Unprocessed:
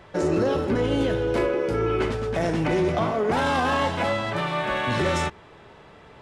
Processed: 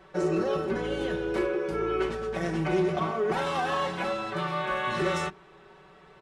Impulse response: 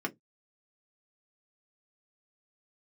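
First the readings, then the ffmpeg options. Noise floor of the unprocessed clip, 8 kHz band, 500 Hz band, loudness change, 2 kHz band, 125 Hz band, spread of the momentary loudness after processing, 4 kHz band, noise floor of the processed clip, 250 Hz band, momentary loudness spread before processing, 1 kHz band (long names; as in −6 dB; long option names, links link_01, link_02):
−49 dBFS, −6.0 dB, −4.5 dB, −5.0 dB, −4.5 dB, −7.0 dB, 4 LU, −5.5 dB, −54 dBFS, −5.0 dB, 4 LU, −4.5 dB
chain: -filter_complex "[0:a]aecho=1:1:5.3:0.85,asplit=2[link_01][link_02];[1:a]atrim=start_sample=2205[link_03];[link_02][link_03]afir=irnorm=-1:irlink=0,volume=-12.5dB[link_04];[link_01][link_04]amix=inputs=2:normalize=0,volume=-9dB"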